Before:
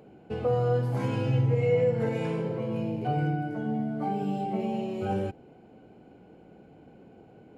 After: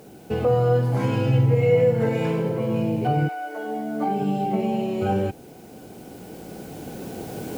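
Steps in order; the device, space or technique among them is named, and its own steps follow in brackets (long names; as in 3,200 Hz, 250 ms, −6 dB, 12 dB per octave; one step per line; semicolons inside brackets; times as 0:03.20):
cheap recorder with automatic gain (white noise bed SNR 35 dB; camcorder AGC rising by 5.9 dB per second)
0:03.27–0:04.18: high-pass filter 660 Hz → 170 Hz 24 dB per octave
level +6 dB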